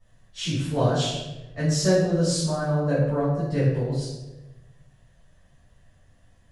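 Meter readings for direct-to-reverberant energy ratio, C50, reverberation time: -13.0 dB, 1.0 dB, 1.0 s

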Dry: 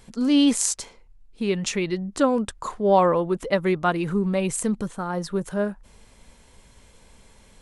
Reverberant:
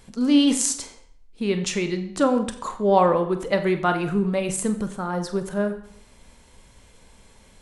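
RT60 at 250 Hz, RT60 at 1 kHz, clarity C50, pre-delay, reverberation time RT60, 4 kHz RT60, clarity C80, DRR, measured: 0.65 s, 0.60 s, 11.5 dB, 27 ms, 0.65 s, 0.55 s, 13.5 dB, 7.5 dB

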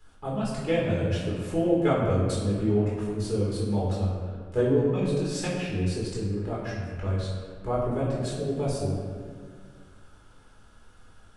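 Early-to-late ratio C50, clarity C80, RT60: 0.5 dB, 2.0 dB, 1.8 s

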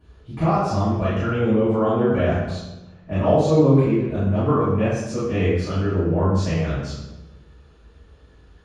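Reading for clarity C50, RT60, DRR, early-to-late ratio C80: -1.0 dB, 1.0 s, -14.5 dB, 2.5 dB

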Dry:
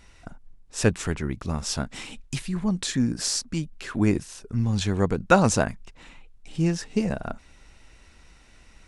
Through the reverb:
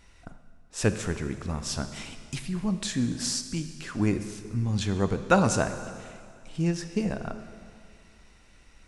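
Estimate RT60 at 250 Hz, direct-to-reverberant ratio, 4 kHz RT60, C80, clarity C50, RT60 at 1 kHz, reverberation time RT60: 2.2 s, 9.0 dB, 2.1 s, 11.0 dB, 10.0 dB, 2.2 s, 2.2 s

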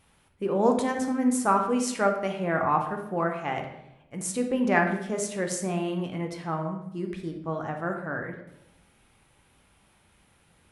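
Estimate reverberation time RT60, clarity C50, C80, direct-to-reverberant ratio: 0.90 s, 6.5 dB, 9.5 dB, 3.0 dB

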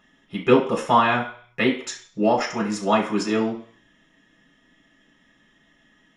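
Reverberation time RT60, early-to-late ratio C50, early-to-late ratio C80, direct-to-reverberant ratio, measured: 0.50 s, 8.0 dB, 12.5 dB, -3.5 dB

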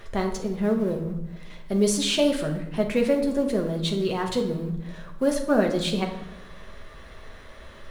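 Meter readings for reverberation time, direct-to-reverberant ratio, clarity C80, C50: 0.85 s, 1.5 dB, 11.0 dB, 8.0 dB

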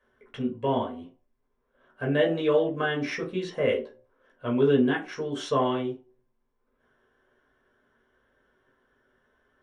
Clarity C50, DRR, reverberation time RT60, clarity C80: 11.5 dB, -3.0 dB, 0.40 s, 17.0 dB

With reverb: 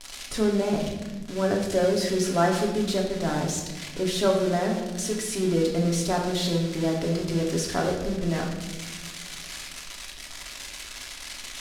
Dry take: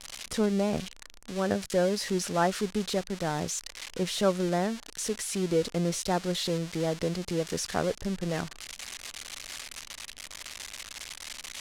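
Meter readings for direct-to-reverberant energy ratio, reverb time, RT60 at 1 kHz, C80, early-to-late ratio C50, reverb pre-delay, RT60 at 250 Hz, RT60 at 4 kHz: -0.5 dB, 1.2 s, 1.0 s, 7.0 dB, 4.5 dB, 3 ms, 2.1 s, 0.90 s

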